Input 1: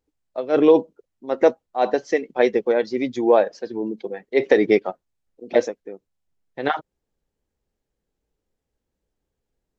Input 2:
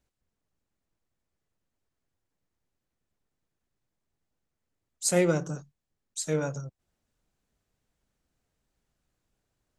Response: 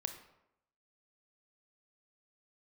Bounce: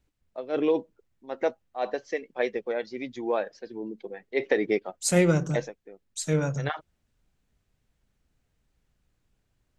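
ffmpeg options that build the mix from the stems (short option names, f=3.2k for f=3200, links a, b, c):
-filter_complex "[0:a]aphaser=in_gain=1:out_gain=1:delay=1.8:decay=0.21:speed=0.23:type=sinusoidal,volume=-11dB[a];[1:a]lowshelf=f=230:g=10,volume=-1dB[b];[a][b]amix=inputs=2:normalize=0,equalizer=f=2.4k:t=o:w=1.8:g=5"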